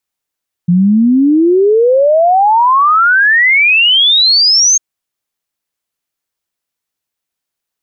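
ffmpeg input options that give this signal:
-f lavfi -i "aevalsrc='0.531*clip(min(t,4.1-t)/0.01,0,1)*sin(2*PI*170*4.1/log(6500/170)*(exp(log(6500/170)*t/4.1)-1))':d=4.1:s=44100"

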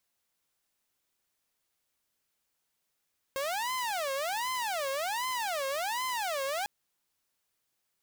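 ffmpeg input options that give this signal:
-f lavfi -i "aevalsrc='0.0398*(2*mod((784*t-246/(2*PI*1.3)*sin(2*PI*1.3*t)),1)-1)':d=3.3:s=44100"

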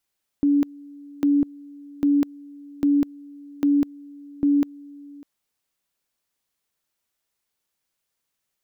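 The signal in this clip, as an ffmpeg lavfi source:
-f lavfi -i "aevalsrc='pow(10,(-15-24*gte(mod(t,0.8),0.2))/20)*sin(2*PI*286*t)':d=4.8:s=44100"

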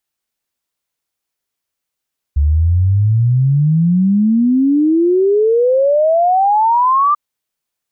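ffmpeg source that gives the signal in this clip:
-f lavfi -i "aevalsrc='0.355*clip(min(t,4.79-t)/0.01,0,1)*sin(2*PI*70*4.79/log(1200/70)*(exp(log(1200/70)*t/4.79)-1))':d=4.79:s=44100"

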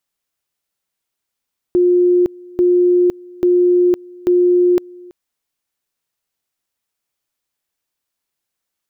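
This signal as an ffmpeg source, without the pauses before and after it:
-f lavfi -i "aevalsrc='pow(10,(-9-25*gte(mod(t,0.84),0.51))/20)*sin(2*PI*356*t)':d=3.36:s=44100"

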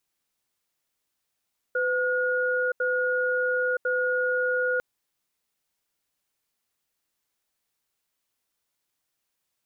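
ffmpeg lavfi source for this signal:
-f lavfi -i "aevalsrc='0.0562*(sin(2*PI*504*t)+sin(2*PI*1440*t))*clip(min(mod(t,1.05),0.97-mod(t,1.05))/0.005,0,1)':d=3.05:s=44100"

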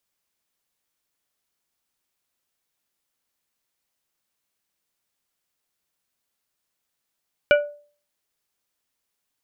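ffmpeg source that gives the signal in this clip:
-f lavfi -i "aevalsrc='0.316*pow(10,-3*t/0.43)*sin(2*PI*586*t)+0.2*pow(10,-3*t/0.226)*sin(2*PI*1465*t)+0.126*pow(10,-3*t/0.163)*sin(2*PI*2344*t)+0.0794*pow(10,-3*t/0.139)*sin(2*PI*2930*t)':d=0.89:s=44100"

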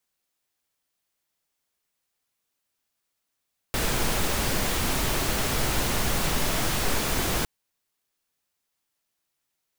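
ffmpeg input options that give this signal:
-f lavfi -i "anoisesrc=c=pink:a=0.288:d=3.71:r=44100:seed=1"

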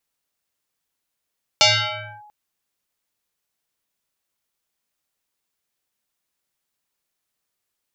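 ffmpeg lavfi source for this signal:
-f lavfi -i "aevalsrc='0.355*pow(10,-3*t/1.12)*sin(2*PI*839*t+7.3*clip(1-t/0.61,0,1)*sin(2*PI*0.87*839*t))':d=0.69:s=44100"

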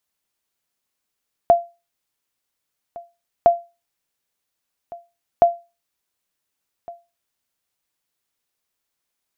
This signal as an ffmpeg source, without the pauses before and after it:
-f lavfi -i "aevalsrc='0.596*(sin(2*PI*688*mod(t,1.96))*exp(-6.91*mod(t,1.96)/0.27)+0.075*sin(2*PI*688*max(mod(t,1.96)-1.46,0))*exp(-6.91*max(mod(t,1.96)-1.46,0)/0.27))':d=5.88:s=44100"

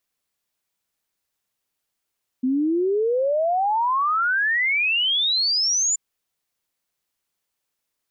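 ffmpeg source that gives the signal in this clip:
-f lavfi -i "aevalsrc='0.126*clip(min(t,3.53-t)/0.01,0,1)*sin(2*PI*250*3.53/log(7200/250)*(exp(log(7200/250)*t/3.53)-1))':d=3.53:s=44100"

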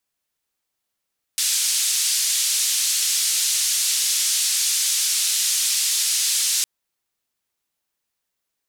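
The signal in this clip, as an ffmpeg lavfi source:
-f lavfi -i "anoisesrc=c=white:d=5.26:r=44100:seed=1,highpass=f=4000,lowpass=f=8900,volume=-9.7dB"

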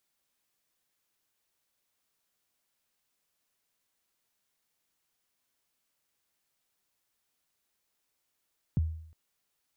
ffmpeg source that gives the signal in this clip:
-f lavfi -i "aevalsrc='0.0891*pow(10,-3*t/0.65)*sin(2*PI*(200*0.021/log(80/200)*(exp(log(80/200)*min(t,0.021)/0.021)-1)+80*max(t-0.021,0)))':d=0.36:s=44100"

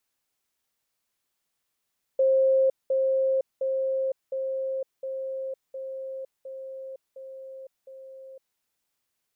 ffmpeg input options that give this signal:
-f lavfi -i "aevalsrc='pow(10,(-17.5-3*floor(t/0.71))/20)*sin(2*PI*531*t)*clip(min(mod(t,0.71),0.51-mod(t,0.71))/0.005,0,1)':d=6.39:s=44100"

